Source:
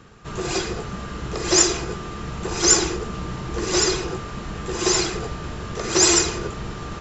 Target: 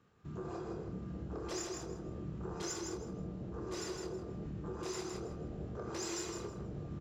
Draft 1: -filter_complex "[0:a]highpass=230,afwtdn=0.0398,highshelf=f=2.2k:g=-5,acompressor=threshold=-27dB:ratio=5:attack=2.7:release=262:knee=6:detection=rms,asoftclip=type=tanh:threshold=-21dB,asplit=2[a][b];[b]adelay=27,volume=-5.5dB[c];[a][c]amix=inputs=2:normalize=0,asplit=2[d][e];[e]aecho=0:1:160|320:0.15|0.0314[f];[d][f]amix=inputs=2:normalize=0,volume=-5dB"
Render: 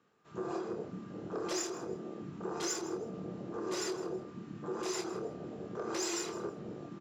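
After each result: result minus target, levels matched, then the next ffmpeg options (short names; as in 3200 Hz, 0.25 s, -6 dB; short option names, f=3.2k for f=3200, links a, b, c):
125 Hz band -8.5 dB; echo-to-direct -11.5 dB; compressor: peak gain reduction -6 dB
-filter_complex "[0:a]highpass=65,afwtdn=0.0398,highshelf=f=2.2k:g=-5,acompressor=threshold=-27dB:ratio=5:attack=2.7:release=262:knee=6:detection=rms,asoftclip=type=tanh:threshold=-21dB,asplit=2[a][b];[b]adelay=27,volume=-5.5dB[c];[a][c]amix=inputs=2:normalize=0,asplit=2[d][e];[e]aecho=0:1:160|320:0.15|0.0314[f];[d][f]amix=inputs=2:normalize=0,volume=-5dB"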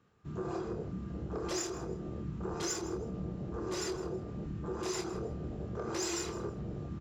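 echo-to-direct -11.5 dB; compressor: peak gain reduction -6 dB
-filter_complex "[0:a]highpass=65,afwtdn=0.0398,highshelf=f=2.2k:g=-5,acompressor=threshold=-27dB:ratio=5:attack=2.7:release=262:knee=6:detection=rms,asoftclip=type=tanh:threshold=-21dB,asplit=2[a][b];[b]adelay=27,volume=-5.5dB[c];[a][c]amix=inputs=2:normalize=0,asplit=2[d][e];[e]aecho=0:1:160|320|480:0.562|0.118|0.0248[f];[d][f]amix=inputs=2:normalize=0,volume=-5dB"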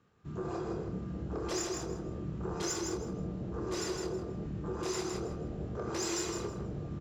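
compressor: peak gain reduction -6 dB
-filter_complex "[0:a]highpass=65,afwtdn=0.0398,highshelf=f=2.2k:g=-5,acompressor=threshold=-34.5dB:ratio=5:attack=2.7:release=262:knee=6:detection=rms,asoftclip=type=tanh:threshold=-21dB,asplit=2[a][b];[b]adelay=27,volume=-5.5dB[c];[a][c]amix=inputs=2:normalize=0,asplit=2[d][e];[e]aecho=0:1:160|320|480:0.562|0.118|0.0248[f];[d][f]amix=inputs=2:normalize=0,volume=-5dB"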